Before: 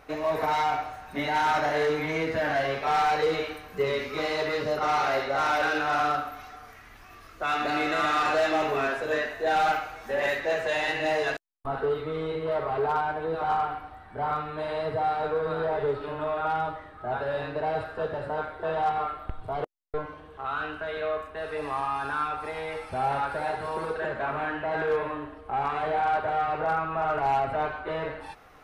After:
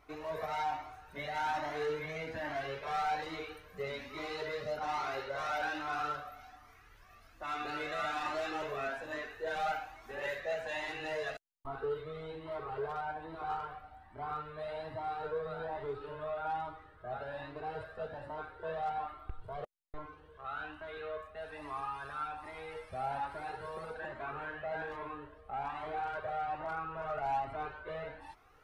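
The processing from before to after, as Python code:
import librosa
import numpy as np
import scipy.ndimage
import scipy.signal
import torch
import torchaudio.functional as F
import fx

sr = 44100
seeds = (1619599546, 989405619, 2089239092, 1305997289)

y = fx.comb_cascade(x, sr, direction='rising', hz=1.2)
y = y * 10.0 ** (-6.5 / 20.0)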